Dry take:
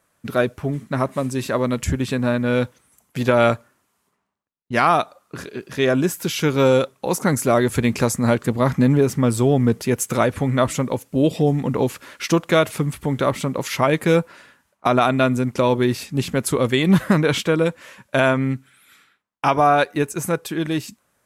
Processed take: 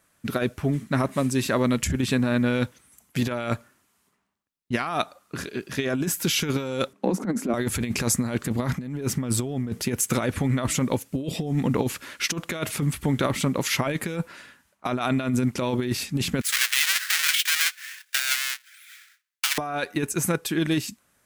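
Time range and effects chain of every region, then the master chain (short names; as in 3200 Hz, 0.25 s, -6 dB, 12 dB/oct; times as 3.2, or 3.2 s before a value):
6.93–7.54 Chebyshev high-pass 190 Hz, order 5 + tilt -4.5 dB/oct + compressor 8:1, threshold -14 dBFS
16.41–19.58 half-waves squared off + Chebyshev high-pass 1700 Hz, order 3
whole clip: graphic EQ 125/500/1000 Hz -3/-5/-4 dB; negative-ratio compressor -23 dBFS, ratio -0.5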